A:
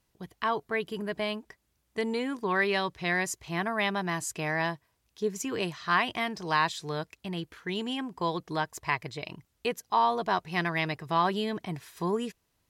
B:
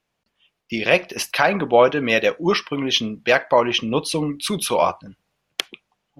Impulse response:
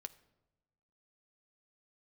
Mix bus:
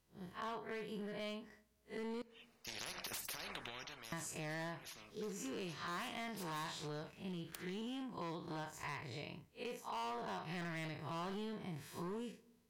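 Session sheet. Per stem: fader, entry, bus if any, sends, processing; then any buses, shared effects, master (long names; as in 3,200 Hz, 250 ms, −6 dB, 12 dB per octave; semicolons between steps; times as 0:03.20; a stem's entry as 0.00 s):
−5.0 dB, 0.00 s, muted 0:02.22–0:04.12, send −5 dB, spectrum smeared in time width 108 ms
−4.5 dB, 1.95 s, send −7 dB, downward compressor, threshold −24 dBFS, peak gain reduction 14.5 dB; notch filter 3,300 Hz, Q 5.9; every bin compressed towards the loudest bin 10 to 1; automatic ducking −18 dB, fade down 0.45 s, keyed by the first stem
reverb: on, RT60 1.1 s, pre-delay 5 ms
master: hard clipping −33 dBFS, distortion −8 dB; downward compressor, threshold −42 dBFS, peak gain reduction 7.5 dB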